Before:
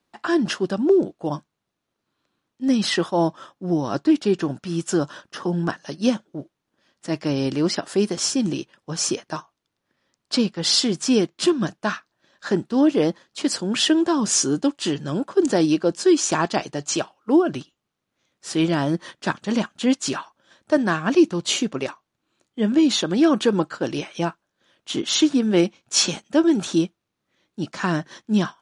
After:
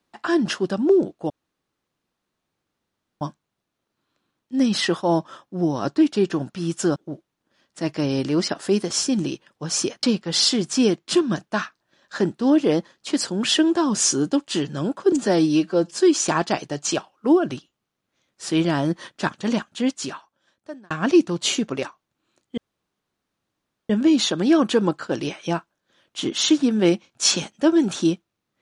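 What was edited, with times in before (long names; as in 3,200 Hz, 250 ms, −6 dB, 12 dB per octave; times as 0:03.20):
0:01.30: splice in room tone 1.91 s
0:05.05–0:06.23: remove
0:09.30–0:10.34: remove
0:15.43–0:15.98: time-stretch 1.5×
0:19.48–0:20.94: fade out
0:22.61: splice in room tone 1.32 s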